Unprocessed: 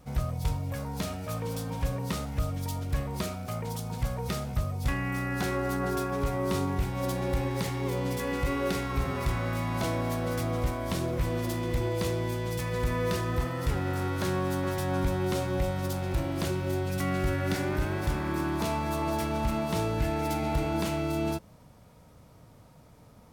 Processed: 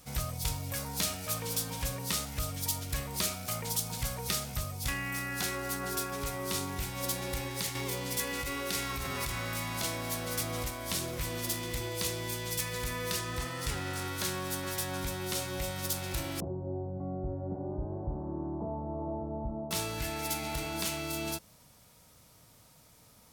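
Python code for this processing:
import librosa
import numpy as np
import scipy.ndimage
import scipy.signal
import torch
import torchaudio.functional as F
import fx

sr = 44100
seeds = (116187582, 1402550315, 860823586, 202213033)

y = fx.env_flatten(x, sr, amount_pct=70, at=(7.75, 10.68))
y = fx.peak_eq(y, sr, hz=14000.0, db=-8.5, octaves=0.42, at=(13.19, 14.06))
y = fx.steep_lowpass(y, sr, hz=800.0, slope=36, at=(16.4, 19.71))
y = fx.high_shelf(y, sr, hz=3000.0, db=10.5)
y = fx.rider(y, sr, range_db=10, speed_s=0.5)
y = fx.tilt_shelf(y, sr, db=-4.0, hz=1300.0)
y = y * librosa.db_to_amplitude(-5.5)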